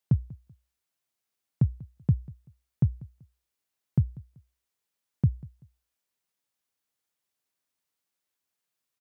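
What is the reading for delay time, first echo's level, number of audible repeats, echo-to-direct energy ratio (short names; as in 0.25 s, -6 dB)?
0.192 s, -21.0 dB, 2, -20.5 dB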